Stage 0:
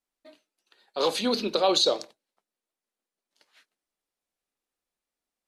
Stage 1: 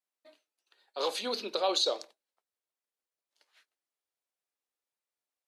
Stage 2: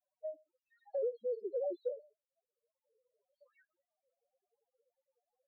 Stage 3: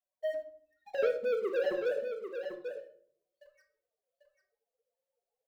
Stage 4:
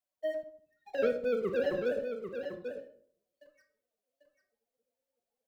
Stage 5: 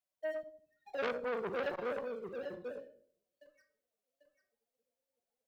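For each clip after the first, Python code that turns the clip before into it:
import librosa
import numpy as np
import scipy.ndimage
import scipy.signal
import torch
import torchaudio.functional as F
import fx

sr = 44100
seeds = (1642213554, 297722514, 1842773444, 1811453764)

y1 = scipy.signal.sosfilt(scipy.signal.butter(2, 400.0, 'highpass', fs=sr, output='sos'), x)
y1 = y1 * librosa.db_to_amplitude(-5.5)
y2 = fx.spec_topn(y1, sr, count=1)
y2 = fx.bandpass_q(y2, sr, hz=450.0, q=4.9)
y2 = fx.band_squash(y2, sr, depth_pct=100)
y2 = y2 * librosa.db_to_amplitude(9.5)
y3 = fx.leveller(y2, sr, passes=3)
y3 = y3 + 10.0 ** (-8.0 / 20.0) * np.pad(y3, (int(793 * sr / 1000.0), 0))[:len(y3)]
y3 = fx.room_shoebox(y3, sr, seeds[0], volume_m3=820.0, walls='furnished', distance_m=1.6)
y4 = fx.octave_divider(y3, sr, octaves=1, level_db=-2.0)
y5 = fx.transformer_sat(y4, sr, knee_hz=1800.0)
y5 = y5 * librosa.db_to_amplitude(-2.5)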